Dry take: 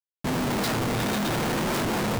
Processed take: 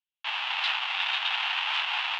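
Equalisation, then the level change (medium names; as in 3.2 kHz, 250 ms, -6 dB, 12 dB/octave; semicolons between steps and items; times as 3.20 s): elliptic high-pass 820 Hz, stop band 50 dB; four-pole ladder low-pass 3.7 kHz, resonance 60%; peaking EQ 2.7 kHz +8 dB 0.29 oct; +8.0 dB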